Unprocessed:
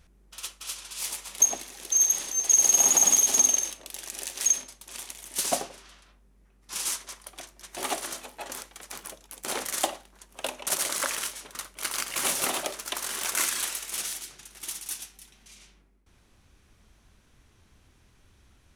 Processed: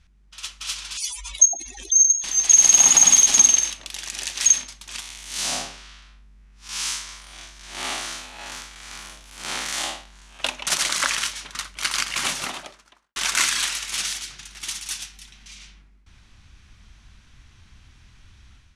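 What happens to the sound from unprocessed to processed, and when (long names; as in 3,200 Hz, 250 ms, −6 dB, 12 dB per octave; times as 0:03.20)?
0:00.97–0:02.24: expanding power law on the bin magnitudes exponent 3.4
0:05.00–0:10.40: spectrum smeared in time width 134 ms
0:11.93–0:13.16: fade out and dull
whole clip: low-pass filter 5,800 Hz 12 dB per octave; parametric band 460 Hz −14.5 dB 1.9 octaves; automatic gain control gain up to 9 dB; level +2.5 dB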